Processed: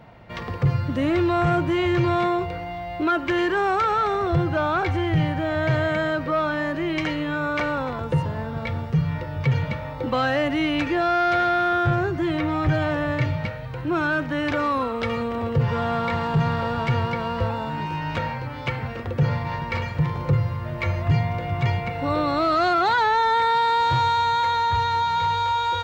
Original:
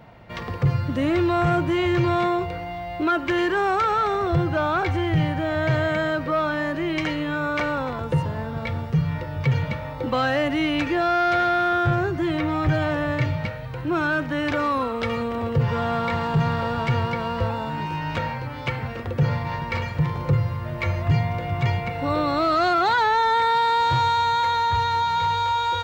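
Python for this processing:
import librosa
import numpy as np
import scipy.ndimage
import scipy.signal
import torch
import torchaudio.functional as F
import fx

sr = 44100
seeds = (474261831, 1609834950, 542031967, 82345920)

y = fx.high_shelf(x, sr, hz=8000.0, db=-4.0)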